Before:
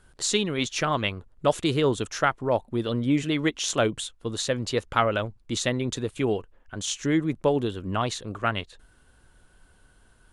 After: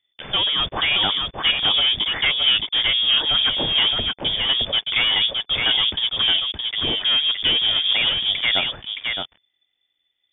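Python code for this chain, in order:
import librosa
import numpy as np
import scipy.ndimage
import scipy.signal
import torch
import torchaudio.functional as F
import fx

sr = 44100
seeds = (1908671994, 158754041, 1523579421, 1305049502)

p1 = fx.leveller(x, sr, passes=5)
p2 = p1 + fx.echo_single(p1, sr, ms=618, db=-4.0, dry=0)
p3 = fx.freq_invert(p2, sr, carrier_hz=3500)
y = p3 * librosa.db_to_amplitude(-8.5)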